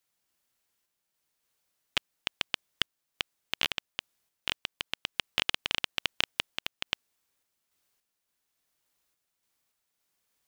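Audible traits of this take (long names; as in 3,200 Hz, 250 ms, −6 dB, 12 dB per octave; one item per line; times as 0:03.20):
sample-and-hold tremolo 3.5 Hz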